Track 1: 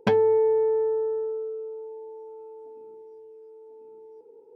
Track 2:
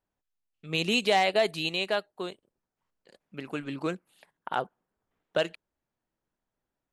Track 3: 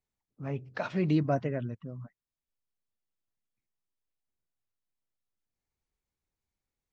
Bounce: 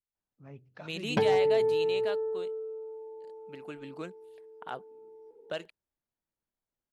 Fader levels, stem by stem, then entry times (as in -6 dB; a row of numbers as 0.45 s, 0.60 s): -4.5 dB, -9.5 dB, -13.5 dB; 1.10 s, 0.15 s, 0.00 s